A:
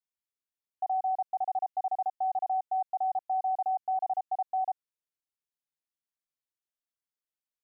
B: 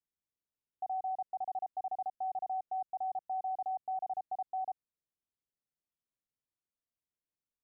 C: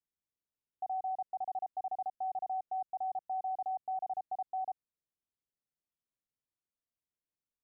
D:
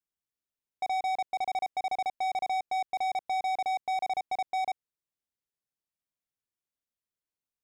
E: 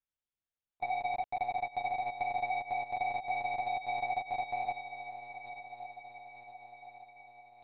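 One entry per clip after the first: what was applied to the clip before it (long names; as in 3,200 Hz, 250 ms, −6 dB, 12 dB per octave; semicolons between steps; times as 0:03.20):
tilt shelving filter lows +8 dB, about 710 Hz; brickwall limiter −29 dBFS, peak gain reduction 4 dB; level −2.5 dB
no processing that can be heard
leveller curve on the samples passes 3; level +4.5 dB
feedback delay with all-pass diffusion 1,017 ms, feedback 58%, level −10.5 dB; one-pitch LPC vocoder at 8 kHz 120 Hz; level −2.5 dB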